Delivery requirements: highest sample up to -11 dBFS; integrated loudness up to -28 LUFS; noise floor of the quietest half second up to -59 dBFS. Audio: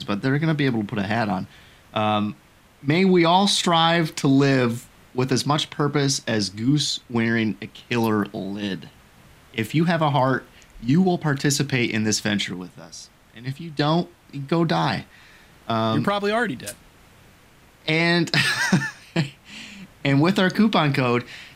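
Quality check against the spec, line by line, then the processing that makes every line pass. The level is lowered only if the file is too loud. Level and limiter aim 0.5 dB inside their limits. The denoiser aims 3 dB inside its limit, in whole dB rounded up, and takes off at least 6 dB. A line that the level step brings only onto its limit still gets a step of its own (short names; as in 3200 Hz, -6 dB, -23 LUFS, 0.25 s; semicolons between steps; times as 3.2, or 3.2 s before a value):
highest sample -4.0 dBFS: fail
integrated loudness -21.5 LUFS: fail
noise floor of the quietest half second -52 dBFS: fail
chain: denoiser 6 dB, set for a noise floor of -52 dBFS; gain -7 dB; limiter -11.5 dBFS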